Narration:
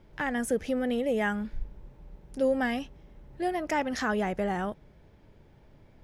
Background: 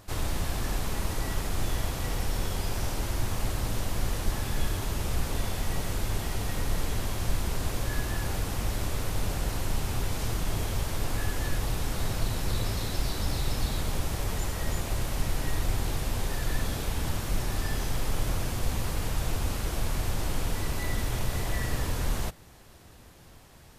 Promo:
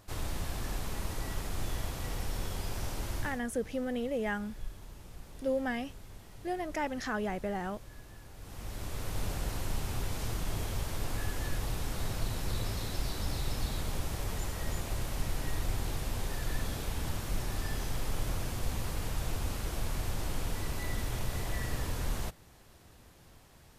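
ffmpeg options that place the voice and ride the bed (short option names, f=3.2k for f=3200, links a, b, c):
-filter_complex "[0:a]adelay=3050,volume=-5.5dB[a];[1:a]volume=9.5dB,afade=t=out:st=3.17:d=0.25:silence=0.188365,afade=t=in:st=8.36:d=0.85:silence=0.16788[b];[a][b]amix=inputs=2:normalize=0"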